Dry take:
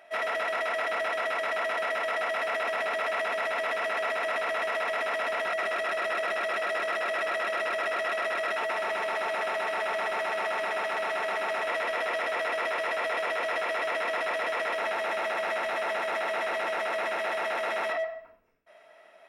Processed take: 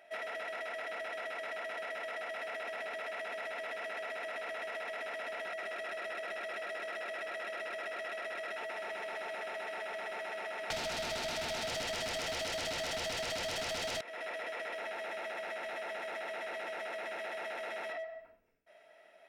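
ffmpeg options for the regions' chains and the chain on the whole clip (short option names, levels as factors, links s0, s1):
-filter_complex "[0:a]asettb=1/sr,asplit=3[s0][s1][s2];[s0]atrim=end=10.704[s3];[s1]atrim=start=10.7:end=14.01,asetpts=PTS-STARTPTS,afade=t=in:d=0.004:c=qsin,afade=t=out:st=3.306:d=0.004:c=qsin,highpass=300,acontrast=80,aeval=exprs='0.211*sin(PI/2*3.55*val(0)/0.211)':c=same[s4];[s2]atrim=start=14.006[s5];[s3][s4]acrossfade=d=0.004:c1=hsin:c2=qsin[s6];[s6][s5]acrossfade=d=0.004:c1=qsin:c2=hsin,equalizer=f=1100:t=o:w=0.41:g=-9.5,acompressor=threshold=0.0224:ratio=6,volume=0.596"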